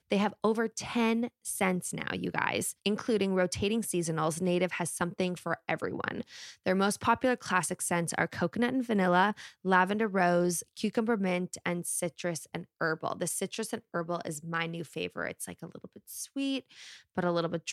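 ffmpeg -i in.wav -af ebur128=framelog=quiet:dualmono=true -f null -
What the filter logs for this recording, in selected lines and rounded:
Integrated loudness:
  I:         -27.9 LUFS
  Threshold: -38.1 LUFS
Loudness range:
  LRA:         7.2 LU
  Threshold: -48.0 LUFS
  LRA low:   -32.7 LUFS
  LRA high:  -25.5 LUFS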